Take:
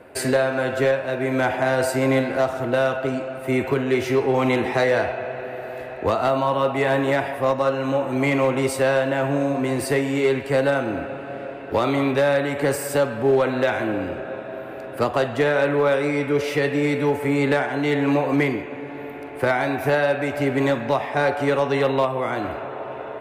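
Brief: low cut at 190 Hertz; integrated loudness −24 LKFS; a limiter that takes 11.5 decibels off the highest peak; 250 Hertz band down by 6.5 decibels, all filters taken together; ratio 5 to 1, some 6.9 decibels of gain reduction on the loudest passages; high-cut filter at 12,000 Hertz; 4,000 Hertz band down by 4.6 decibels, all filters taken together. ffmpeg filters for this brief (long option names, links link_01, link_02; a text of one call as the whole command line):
ffmpeg -i in.wav -af "highpass=190,lowpass=12000,equalizer=frequency=250:width_type=o:gain=-6.5,equalizer=frequency=4000:width_type=o:gain=-6,acompressor=threshold=-24dB:ratio=5,volume=10dB,alimiter=limit=-16dB:level=0:latency=1" out.wav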